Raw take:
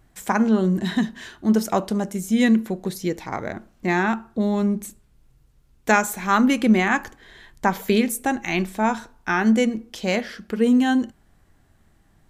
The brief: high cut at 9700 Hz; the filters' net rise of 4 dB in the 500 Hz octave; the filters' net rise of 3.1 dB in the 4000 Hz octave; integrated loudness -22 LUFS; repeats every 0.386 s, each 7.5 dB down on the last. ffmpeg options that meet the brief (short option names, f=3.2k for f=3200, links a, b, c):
-af "lowpass=9.7k,equalizer=f=500:t=o:g=5,equalizer=f=4k:t=o:g=4,aecho=1:1:386|772|1158|1544|1930:0.422|0.177|0.0744|0.0312|0.0131,volume=-2dB"